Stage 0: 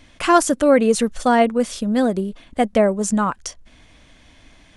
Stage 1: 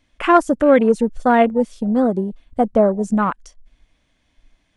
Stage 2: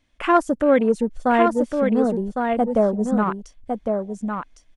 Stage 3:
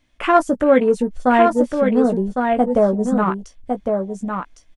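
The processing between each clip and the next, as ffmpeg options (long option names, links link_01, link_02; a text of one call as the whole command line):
ffmpeg -i in.wav -af "afwtdn=0.0447,volume=1.5dB" out.wav
ffmpeg -i in.wav -af "aecho=1:1:1107:0.562,volume=-4dB" out.wav
ffmpeg -i in.wav -filter_complex "[0:a]asplit=2[link_01][link_02];[link_02]adelay=16,volume=-8dB[link_03];[link_01][link_03]amix=inputs=2:normalize=0,volume=2.5dB" out.wav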